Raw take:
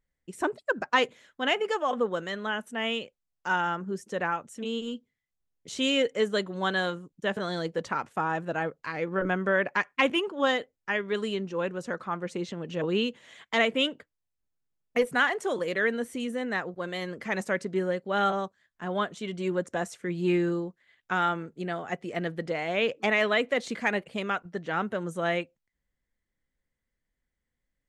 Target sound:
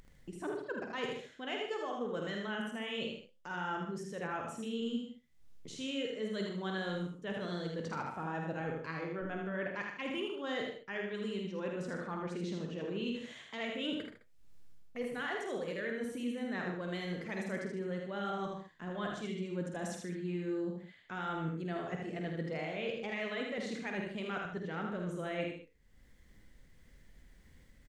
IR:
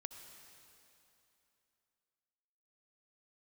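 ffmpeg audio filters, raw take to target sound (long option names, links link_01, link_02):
-filter_complex "[0:a]lowpass=frequency=3600:poles=1,equalizer=frequency=980:width_type=o:width=2.9:gain=-7,areverse,acompressor=threshold=-43dB:ratio=8,areverse,flanger=delay=5.9:depth=8.2:regen=80:speed=0.56:shape=triangular,asplit=2[link_01][link_02];[1:a]atrim=start_sample=2205,atrim=end_sample=3969[link_03];[link_02][link_03]afir=irnorm=-1:irlink=0,volume=1.5dB[link_04];[link_01][link_04]amix=inputs=2:normalize=0,acompressor=mode=upward:threshold=-50dB:ratio=2.5,aecho=1:1:50|79|122|153|210:0.447|0.631|0.299|0.282|0.141,volume=5.5dB"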